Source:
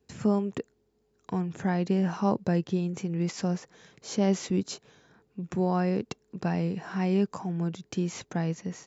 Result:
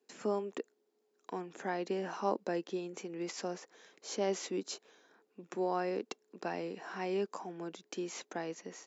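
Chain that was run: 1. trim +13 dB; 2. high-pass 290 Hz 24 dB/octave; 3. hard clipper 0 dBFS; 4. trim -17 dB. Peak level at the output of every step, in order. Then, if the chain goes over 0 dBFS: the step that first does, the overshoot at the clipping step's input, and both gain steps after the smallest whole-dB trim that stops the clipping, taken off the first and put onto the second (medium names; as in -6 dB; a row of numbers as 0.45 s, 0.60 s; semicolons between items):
-0.5 dBFS, -2.0 dBFS, -2.0 dBFS, -19.0 dBFS; nothing clips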